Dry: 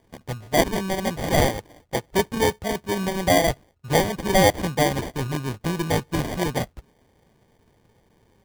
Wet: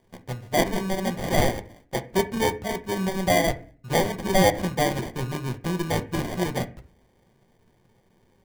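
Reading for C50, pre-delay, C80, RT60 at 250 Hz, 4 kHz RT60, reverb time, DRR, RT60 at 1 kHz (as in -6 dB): 16.5 dB, 5 ms, 20.5 dB, 0.60 s, 0.30 s, 0.40 s, 8.0 dB, 0.35 s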